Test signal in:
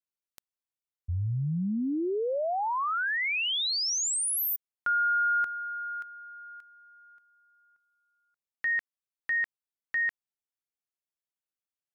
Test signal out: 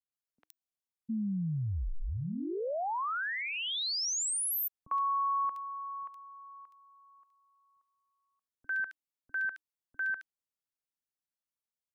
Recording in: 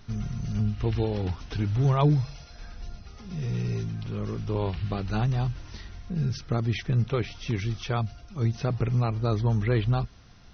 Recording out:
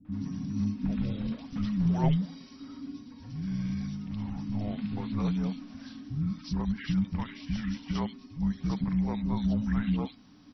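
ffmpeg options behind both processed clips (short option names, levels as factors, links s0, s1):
-filter_complex "[0:a]acrossover=split=550|2700[s0][s1][s2];[s1]adelay=50[s3];[s2]adelay=120[s4];[s0][s3][s4]amix=inputs=3:normalize=0,afreqshift=-310,volume=0.668"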